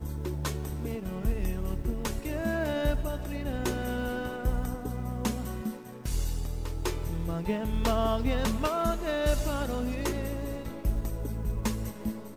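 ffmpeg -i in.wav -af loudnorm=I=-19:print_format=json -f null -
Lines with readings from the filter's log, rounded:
"input_i" : "-32.3",
"input_tp" : "-13.0",
"input_lra" : "3.2",
"input_thresh" : "-42.3",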